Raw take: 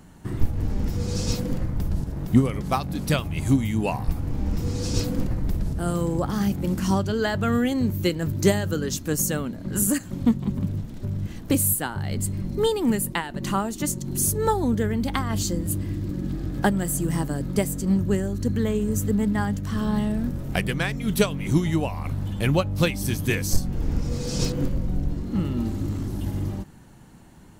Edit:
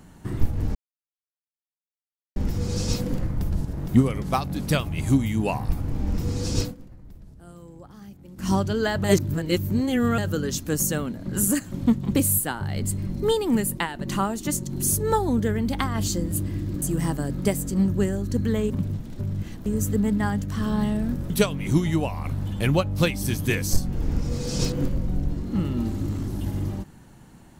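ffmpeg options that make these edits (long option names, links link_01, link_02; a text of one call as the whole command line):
ffmpeg -i in.wav -filter_complex "[0:a]asplit=11[link_01][link_02][link_03][link_04][link_05][link_06][link_07][link_08][link_09][link_10][link_11];[link_01]atrim=end=0.75,asetpts=PTS-STARTPTS,afade=type=out:start_time=0.746:duration=0.004:curve=hsin,apad=pad_dur=1.61[link_12];[link_02]atrim=start=0.75:end=5.14,asetpts=PTS-STARTPTS,afade=type=in:duration=0.004:curve=hsin,afade=type=out:start_time=4.25:duration=0.14:silence=0.1[link_13];[link_03]atrim=start=5.14:end=6.75,asetpts=PTS-STARTPTS,volume=-20dB[link_14];[link_04]atrim=start=6.75:end=7.432,asetpts=PTS-STARTPTS,afade=type=in:duration=0.14:silence=0.1[link_15];[link_05]atrim=start=7.428:end=8.572,asetpts=PTS-STARTPTS,areverse[link_16];[link_06]atrim=start=8.568:end=10.542[link_17];[link_07]atrim=start=11.498:end=16.172[link_18];[link_08]atrim=start=16.928:end=18.812[link_19];[link_09]atrim=start=10.538:end=11.502[link_20];[link_10]atrim=start=18.808:end=20.452[link_21];[link_11]atrim=start=21.098[link_22];[link_12][link_13][link_14][link_15]concat=n=4:v=0:a=1[link_23];[link_23][link_16]acrossfade=duration=0.004:curve1=hsin:curve2=hsin[link_24];[link_24][link_17]acrossfade=duration=0.004:curve1=hsin:curve2=hsin[link_25];[link_25][link_18]acrossfade=duration=0.004:curve1=hsin:curve2=hsin[link_26];[link_26][link_19]acrossfade=duration=0.004:curve1=hsin:curve2=hsin[link_27];[link_27][link_20]acrossfade=duration=0.004:curve1=hsin:curve2=hsin[link_28];[link_28][link_21]acrossfade=duration=0.004:curve1=hsin:curve2=hsin[link_29];[link_29][link_22]acrossfade=duration=0.004:curve1=hsin:curve2=hsin" out.wav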